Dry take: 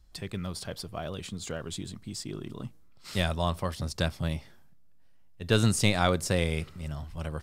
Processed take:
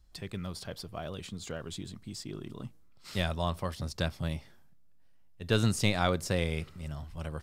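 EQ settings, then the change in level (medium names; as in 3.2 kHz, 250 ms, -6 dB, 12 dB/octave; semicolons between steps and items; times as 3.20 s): dynamic bell 8.9 kHz, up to -4 dB, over -50 dBFS, Q 1.5; -3.0 dB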